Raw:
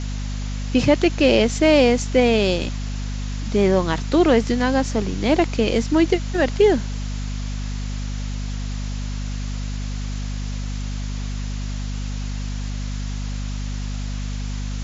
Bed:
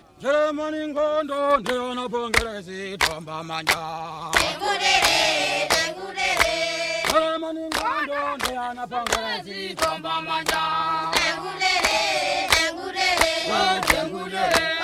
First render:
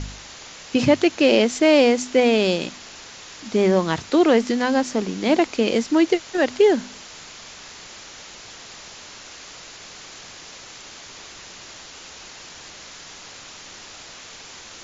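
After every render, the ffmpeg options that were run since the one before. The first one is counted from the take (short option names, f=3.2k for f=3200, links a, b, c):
-af "bandreject=f=50:t=h:w=4,bandreject=f=100:t=h:w=4,bandreject=f=150:t=h:w=4,bandreject=f=200:t=h:w=4,bandreject=f=250:t=h:w=4"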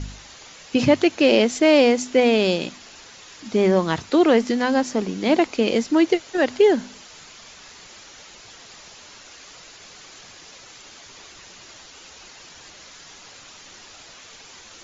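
-af "afftdn=nr=6:nf=-41"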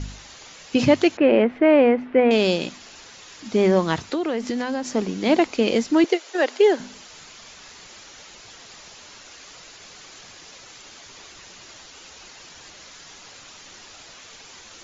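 -filter_complex "[0:a]asettb=1/sr,asplit=3[a][b][c];[a]atrim=end=1.174[d];[b]atrim=start=1.17:end=2.31,asetpts=PTS-STARTPTS,afade=t=in:d=0.004:c=qsin,afade=t=out:st=1.136:d=0.004:c=qsin,lowpass=f=2.2k:w=0.5412,lowpass=f=2.2k:w=1.3066[e];[c]atrim=start=2.306[f];[d][e]acrossfade=d=0.004:c1=hsin:c2=qsin[g];[g][f]acrossfade=d=0.004:c1=qsin:c2=hsin,asettb=1/sr,asplit=3[h][i][j];[h]atrim=end=4.084[k];[i]atrim=start=4.08:end=4.9,asetpts=PTS-STARTPTS,afade=t=in:d=0.004:c=qsin,afade=t=out:st=0.816:d=0.004:c=qsin,acompressor=threshold=-21dB:ratio=5:attack=3.2:release=140:knee=1:detection=peak[l];[j]atrim=start=4.896[m];[k][l]acrossfade=d=0.004:c1=hsin:c2=qsin[n];[n][m]acrossfade=d=0.004:c1=qsin:c2=hsin,asettb=1/sr,asplit=3[o][p][q];[o]atrim=end=6.044[r];[p]atrim=start=6.04:end=6.8,asetpts=PTS-STARTPTS,afade=t=in:d=0.004:c=qsin,afade=t=out:st=0.756:d=0.004:c=qsin,highpass=f=340:w=0.5412,highpass=f=340:w=1.3066[s];[q]atrim=start=6.796[t];[r][s]acrossfade=d=0.004:c1=hsin:c2=qsin[u];[u][t]acrossfade=d=0.004:c1=qsin:c2=hsin"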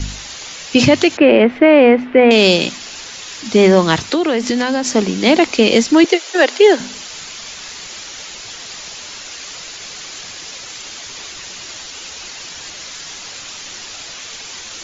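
-filter_complex "[0:a]acrossover=split=290|2000[a][b][c];[c]acontrast=32[d];[a][b][d]amix=inputs=3:normalize=0,alimiter=level_in=8.5dB:limit=-1dB:release=50:level=0:latency=1"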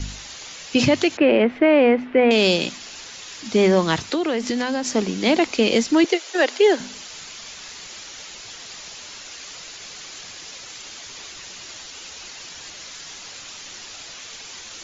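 -af "volume=-6.5dB"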